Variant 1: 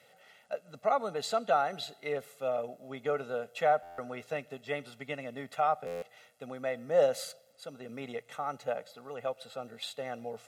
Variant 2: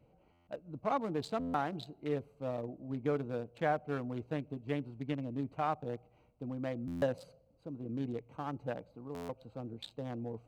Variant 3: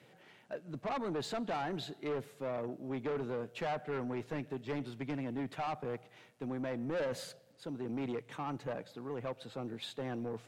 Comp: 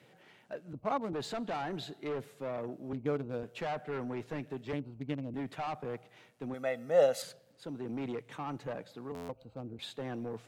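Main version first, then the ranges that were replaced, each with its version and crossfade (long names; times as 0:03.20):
3
0:00.73–0:01.13: punch in from 2
0:02.93–0:03.43: punch in from 2
0:04.73–0:05.34: punch in from 2
0:06.54–0:07.22: punch in from 1
0:09.12–0:09.79: punch in from 2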